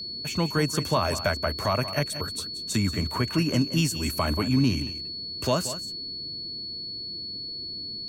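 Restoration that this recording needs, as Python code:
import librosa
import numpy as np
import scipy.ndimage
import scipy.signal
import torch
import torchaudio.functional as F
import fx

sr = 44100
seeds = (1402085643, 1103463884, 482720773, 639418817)

y = fx.notch(x, sr, hz=4400.0, q=30.0)
y = fx.noise_reduce(y, sr, print_start_s=6.65, print_end_s=7.15, reduce_db=30.0)
y = fx.fix_echo_inverse(y, sr, delay_ms=181, level_db=-12.5)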